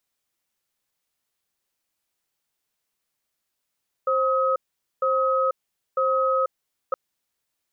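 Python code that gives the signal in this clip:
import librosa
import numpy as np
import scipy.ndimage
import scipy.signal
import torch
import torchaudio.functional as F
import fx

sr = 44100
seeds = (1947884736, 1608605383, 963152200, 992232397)

y = fx.cadence(sr, length_s=2.87, low_hz=528.0, high_hz=1270.0, on_s=0.49, off_s=0.46, level_db=-21.5)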